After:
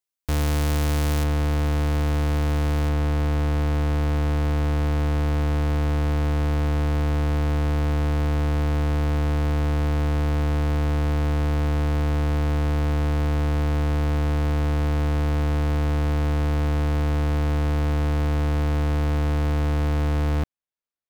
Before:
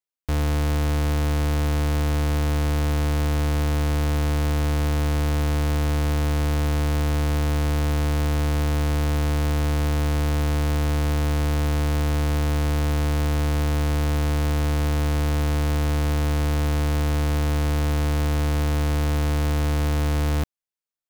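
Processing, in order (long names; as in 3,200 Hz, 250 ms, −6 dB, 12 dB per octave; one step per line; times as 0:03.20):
high-shelf EQ 4,200 Hz +5 dB, from 0:01.24 −6 dB, from 0:02.89 −12 dB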